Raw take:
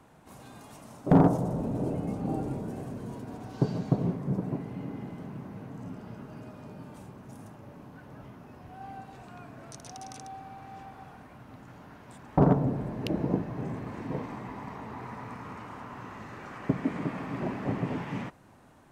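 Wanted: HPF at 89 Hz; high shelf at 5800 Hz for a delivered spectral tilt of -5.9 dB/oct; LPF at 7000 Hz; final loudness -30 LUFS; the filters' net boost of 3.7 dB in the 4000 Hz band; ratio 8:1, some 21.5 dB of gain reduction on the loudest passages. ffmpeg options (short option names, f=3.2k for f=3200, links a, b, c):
-af "highpass=89,lowpass=7k,equalizer=f=4k:t=o:g=7.5,highshelf=f=5.8k:g=-5.5,acompressor=threshold=-39dB:ratio=8,volume=14.5dB"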